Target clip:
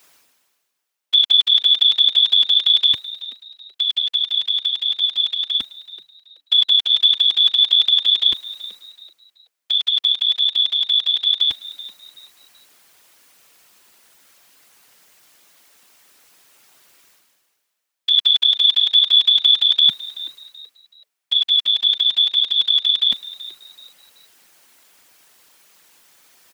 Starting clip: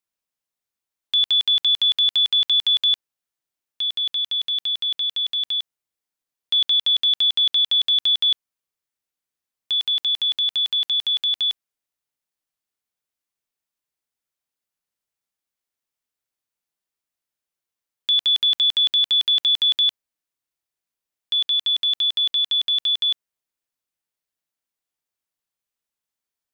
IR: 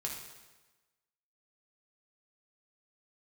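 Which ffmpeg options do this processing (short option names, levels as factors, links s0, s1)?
-filter_complex "[0:a]highpass=160,equalizer=f=1900:t=o:w=2.7:g=2.5,areverse,acompressor=mode=upward:threshold=0.0282:ratio=2.5,areverse,afftfilt=real='hypot(re,im)*cos(2*PI*random(0))':imag='hypot(re,im)*sin(2*PI*random(1))':win_size=512:overlap=0.75,asplit=4[s0][s1][s2][s3];[s1]adelay=379,afreqshift=140,volume=0.141[s4];[s2]adelay=758,afreqshift=280,volume=0.0468[s5];[s3]adelay=1137,afreqshift=420,volume=0.0153[s6];[s0][s4][s5][s6]amix=inputs=4:normalize=0,volume=2.51"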